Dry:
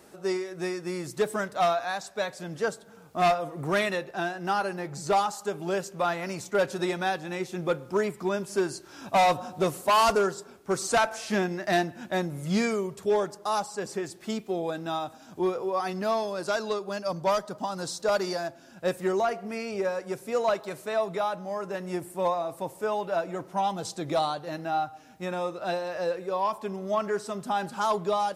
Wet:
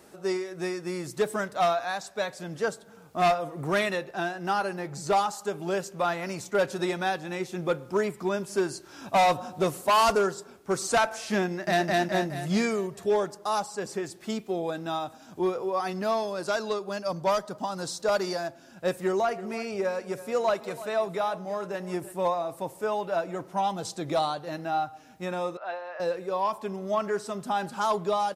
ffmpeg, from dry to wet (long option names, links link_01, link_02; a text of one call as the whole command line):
ffmpeg -i in.wav -filter_complex "[0:a]asplit=2[link_01][link_02];[link_02]afade=type=in:start_time=11.46:duration=0.01,afade=type=out:start_time=11.87:duration=0.01,aecho=0:1:210|420|630|840|1050|1260|1470:0.944061|0.47203|0.236015|0.118008|0.0590038|0.0295019|0.014751[link_03];[link_01][link_03]amix=inputs=2:normalize=0,asettb=1/sr,asplit=3[link_04][link_05][link_06];[link_04]atrim=end=19.034[link_07];[link_05]atrim=start=19.03:end=22.26,asetpts=PTS-STARTPTS,afade=type=in:duration=0.004:curve=qsin,afade=type=out:start_time=3.226:duration=0.004:curve=qsin,aecho=1:1:332:0.168,atrim=end_sample=142443[link_08];[link_06]atrim=start=22.256[link_09];[link_07][link_08]acrossfade=duration=0.004:curve1=hsin:curve2=qsin[link_10];[link_10][link_09]acrossfade=duration=0.004:curve1=qsin:curve2=hsin,asettb=1/sr,asplit=3[link_11][link_12][link_13];[link_11]atrim=end=25.574[link_14];[link_12]atrim=start=25.57:end=26,asetpts=PTS-STARTPTS,afade=type=in:duration=0.004:curve=qsin,afade=type=out:start_time=0.426:duration=0.004:curve=qsin,highpass=750,lowpass=2000[link_15];[link_13]atrim=start=25.996[link_16];[link_14][link_15]acrossfade=duration=0.004:curve1=hsin:curve2=qsin[link_17];[link_17][link_16]acrossfade=duration=0.004:curve1=qsin:curve2=hsin" out.wav